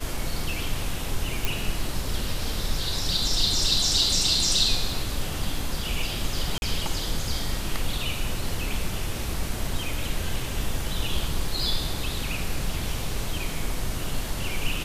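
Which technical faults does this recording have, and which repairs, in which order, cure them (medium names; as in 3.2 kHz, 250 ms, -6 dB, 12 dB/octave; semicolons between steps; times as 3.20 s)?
1.45 s: pop
6.58–6.62 s: dropout 41 ms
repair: de-click; interpolate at 6.58 s, 41 ms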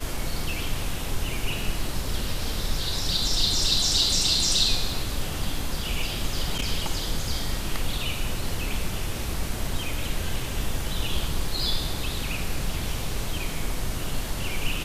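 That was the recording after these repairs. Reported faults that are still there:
nothing left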